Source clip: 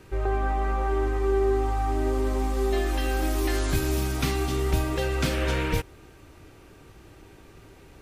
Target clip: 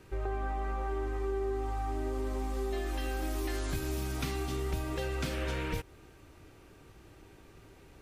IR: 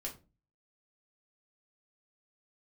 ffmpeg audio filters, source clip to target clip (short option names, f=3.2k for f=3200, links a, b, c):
-af "acompressor=threshold=-26dB:ratio=2.5,volume=-5.5dB"